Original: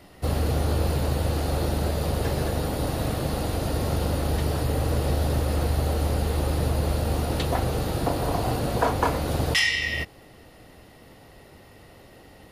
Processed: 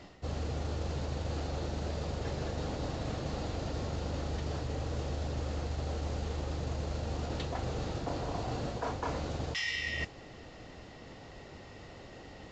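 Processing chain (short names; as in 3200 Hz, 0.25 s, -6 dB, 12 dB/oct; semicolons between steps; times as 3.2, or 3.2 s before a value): reverse; compressor 6:1, threshold -33 dBFS, peak gain reduction 15.5 dB; reverse; modulation noise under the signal 17 dB; µ-law 128 kbps 16000 Hz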